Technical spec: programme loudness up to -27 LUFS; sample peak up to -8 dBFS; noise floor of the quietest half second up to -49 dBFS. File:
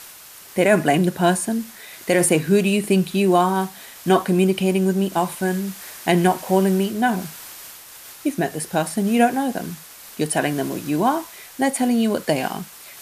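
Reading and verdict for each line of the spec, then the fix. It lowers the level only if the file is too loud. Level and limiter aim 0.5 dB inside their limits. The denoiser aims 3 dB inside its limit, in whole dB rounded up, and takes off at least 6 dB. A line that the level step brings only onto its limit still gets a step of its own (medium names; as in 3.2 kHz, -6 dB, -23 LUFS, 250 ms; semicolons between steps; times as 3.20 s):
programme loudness -20.5 LUFS: fail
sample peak -4.5 dBFS: fail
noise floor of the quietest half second -42 dBFS: fail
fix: noise reduction 6 dB, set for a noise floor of -42 dBFS; trim -7 dB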